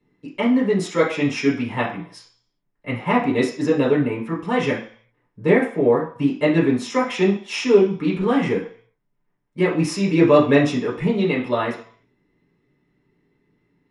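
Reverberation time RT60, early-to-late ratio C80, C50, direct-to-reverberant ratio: 0.50 s, 12.0 dB, 7.5 dB, -6.0 dB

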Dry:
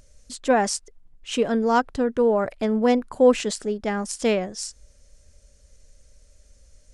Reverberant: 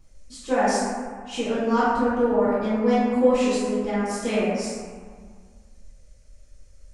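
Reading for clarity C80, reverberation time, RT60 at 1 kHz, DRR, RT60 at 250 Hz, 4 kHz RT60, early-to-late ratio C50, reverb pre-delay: 0.0 dB, 1.8 s, 2.0 s, -14.0 dB, 2.1 s, 1.0 s, -3.5 dB, 5 ms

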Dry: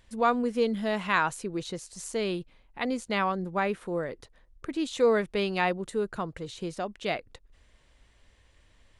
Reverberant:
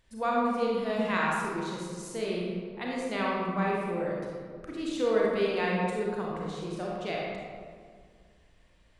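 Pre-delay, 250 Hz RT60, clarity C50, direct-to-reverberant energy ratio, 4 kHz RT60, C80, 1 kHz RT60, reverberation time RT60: 30 ms, 2.4 s, -2.0 dB, -4.5 dB, 1.0 s, 0.0 dB, 1.8 s, 1.9 s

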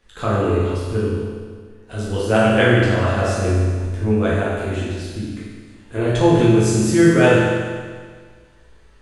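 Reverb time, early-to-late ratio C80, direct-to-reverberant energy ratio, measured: 1.7 s, 0.5 dB, -8.5 dB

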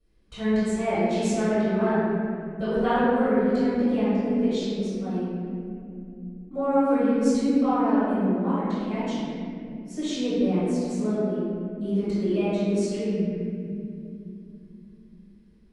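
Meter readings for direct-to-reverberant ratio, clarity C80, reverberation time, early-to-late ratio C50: -18.0 dB, -2.5 dB, 2.7 s, -5.5 dB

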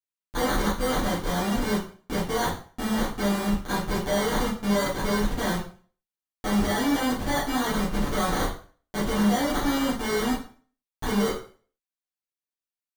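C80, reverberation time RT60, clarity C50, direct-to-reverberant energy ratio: 11.0 dB, 0.40 s, 5.5 dB, -9.5 dB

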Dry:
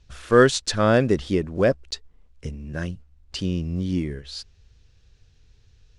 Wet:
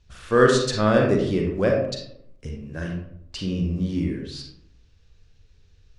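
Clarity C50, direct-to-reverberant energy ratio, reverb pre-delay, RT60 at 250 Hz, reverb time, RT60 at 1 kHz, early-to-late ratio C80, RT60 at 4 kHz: 2.5 dB, 0.0 dB, 36 ms, 0.90 s, 0.70 s, 0.65 s, 7.0 dB, 0.40 s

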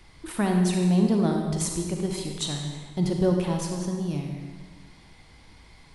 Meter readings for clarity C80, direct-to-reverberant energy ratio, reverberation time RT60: 5.0 dB, 2.0 dB, 1.4 s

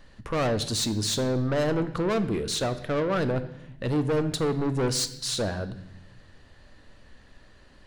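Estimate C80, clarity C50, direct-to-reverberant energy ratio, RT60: 15.5 dB, 13.5 dB, 10.0 dB, 0.85 s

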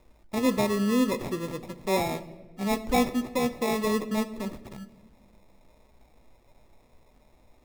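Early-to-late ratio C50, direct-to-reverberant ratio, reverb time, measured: 14.5 dB, 10.5 dB, 1.3 s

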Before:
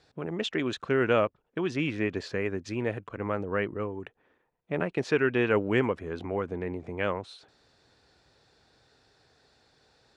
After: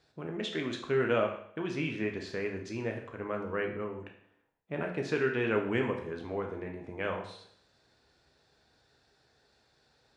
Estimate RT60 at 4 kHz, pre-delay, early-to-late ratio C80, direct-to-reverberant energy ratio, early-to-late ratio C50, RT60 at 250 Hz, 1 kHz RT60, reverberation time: 0.65 s, 11 ms, 10.0 dB, 2.0 dB, 7.5 dB, 0.65 s, 0.65 s, 0.65 s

